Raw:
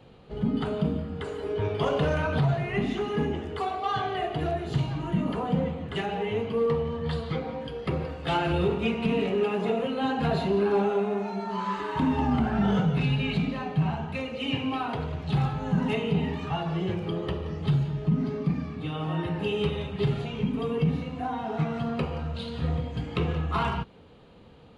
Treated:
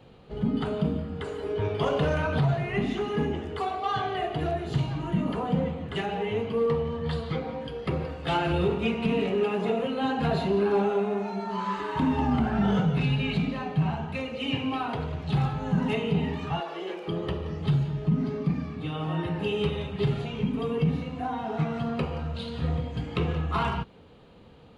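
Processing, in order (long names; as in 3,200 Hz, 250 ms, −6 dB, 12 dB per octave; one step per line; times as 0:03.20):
0:16.60–0:17.08: high-pass filter 350 Hz 24 dB per octave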